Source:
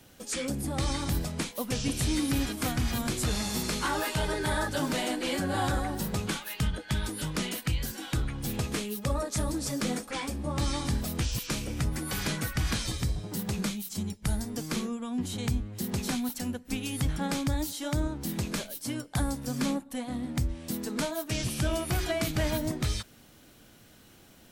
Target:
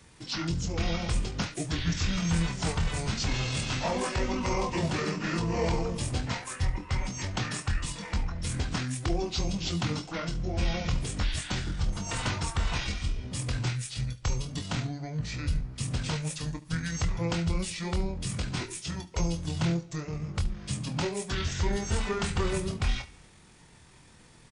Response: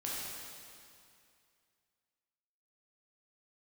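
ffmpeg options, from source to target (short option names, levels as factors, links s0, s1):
-filter_complex "[0:a]asetrate=26990,aresample=44100,atempo=1.63392,aecho=1:1:24|73:0.398|0.126,asplit=2[s0][s1];[1:a]atrim=start_sample=2205,afade=t=out:st=0.41:d=0.01,atrim=end_sample=18522[s2];[s1][s2]afir=irnorm=-1:irlink=0,volume=0.0562[s3];[s0][s3]amix=inputs=2:normalize=0"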